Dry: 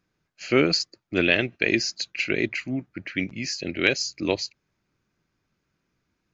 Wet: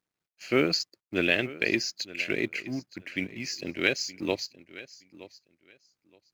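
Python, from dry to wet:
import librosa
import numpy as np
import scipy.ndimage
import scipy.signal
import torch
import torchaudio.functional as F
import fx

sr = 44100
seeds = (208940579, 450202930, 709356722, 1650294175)

y = fx.law_mismatch(x, sr, coded='A')
y = fx.low_shelf(y, sr, hz=79.0, db=-7.5)
y = fx.echo_feedback(y, sr, ms=920, feedback_pct=19, wet_db=-18.0)
y = y * librosa.db_to_amplitude(-3.5)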